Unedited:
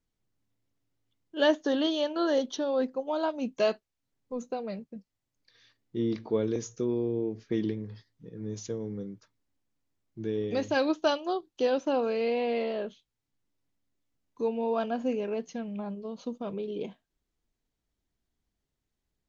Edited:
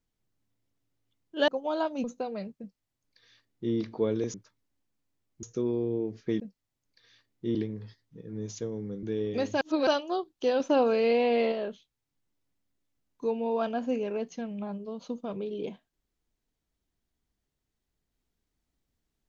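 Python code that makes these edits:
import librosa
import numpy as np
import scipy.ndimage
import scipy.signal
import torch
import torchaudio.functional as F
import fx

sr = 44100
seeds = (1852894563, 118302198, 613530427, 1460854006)

y = fx.edit(x, sr, fx.cut(start_s=1.48, length_s=1.43),
    fx.cut(start_s=3.47, length_s=0.89),
    fx.duplicate(start_s=4.91, length_s=1.15, to_s=7.63),
    fx.move(start_s=9.11, length_s=1.09, to_s=6.66),
    fx.reverse_span(start_s=10.78, length_s=0.26),
    fx.clip_gain(start_s=11.77, length_s=0.92, db=4.0), tone=tone)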